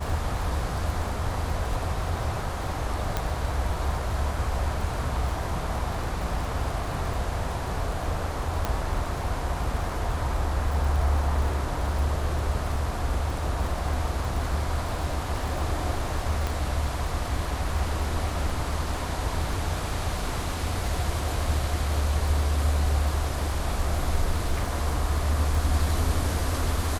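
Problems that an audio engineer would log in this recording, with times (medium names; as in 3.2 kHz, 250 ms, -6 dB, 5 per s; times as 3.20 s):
crackle 32 per s -31 dBFS
3.17 s: pop -12 dBFS
8.65 s: pop -12 dBFS
16.47 s: pop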